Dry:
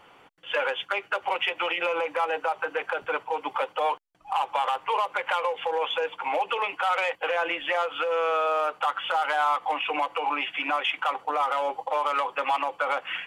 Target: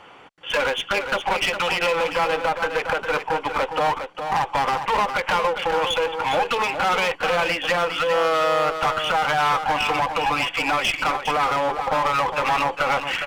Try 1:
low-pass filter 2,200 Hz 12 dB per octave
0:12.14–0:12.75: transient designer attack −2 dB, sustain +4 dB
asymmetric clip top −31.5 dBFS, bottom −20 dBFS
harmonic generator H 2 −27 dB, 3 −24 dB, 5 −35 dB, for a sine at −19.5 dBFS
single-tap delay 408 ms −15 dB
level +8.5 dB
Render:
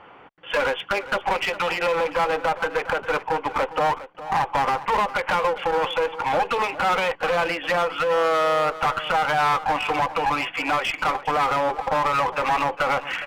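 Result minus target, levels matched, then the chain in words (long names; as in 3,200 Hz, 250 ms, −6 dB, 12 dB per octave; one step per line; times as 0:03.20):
echo-to-direct −7 dB; 8,000 Hz band −4.0 dB
low-pass filter 8,200 Hz 12 dB per octave
0:12.14–0:12.75: transient designer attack −2 dB, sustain +4 dB
asymmetric clip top −31.5 dBFS, bottom −20 dBFS
harmonic generator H 2 −27 dB, 3 −24 dB, 5 −35 dB, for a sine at −19.5 dBFS
single-tap delay 408 ms −8 dB
level +8.5 dB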